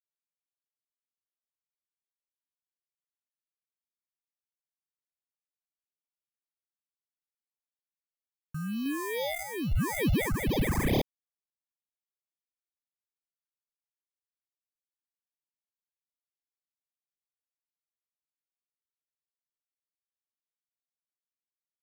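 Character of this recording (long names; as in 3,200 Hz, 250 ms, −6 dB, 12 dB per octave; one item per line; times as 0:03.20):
aliases and images of a low sample rate 1,400 Hz, jitter 0%
phaser sweep stages 4, 2.3 Hz, lowest notch 540–1,500 Hz
a quantiser's noise floor 12 bits, dither none
sample-and-hold tremolo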